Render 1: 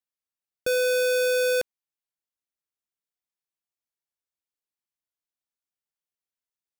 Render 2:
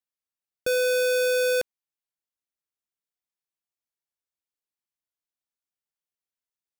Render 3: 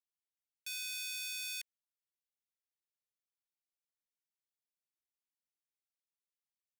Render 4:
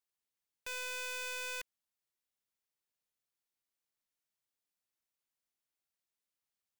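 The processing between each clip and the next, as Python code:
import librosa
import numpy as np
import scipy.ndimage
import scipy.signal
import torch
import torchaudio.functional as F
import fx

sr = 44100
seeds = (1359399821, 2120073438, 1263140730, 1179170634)

y1 = x
y2 = scipy.signal.sosfilt(scipy.signal.ellip(4, 1.0, 40, 1900.0, 'highpass', fs=sr, output='sos'), y1)
y2 = y2 * librosa.db_to_amplitude(-8.0)
y3 = fx.tracing_dist(y2, sr, depth_ms=0.096)
y3 = y3 * librosa.db_to_amplitude(3.0)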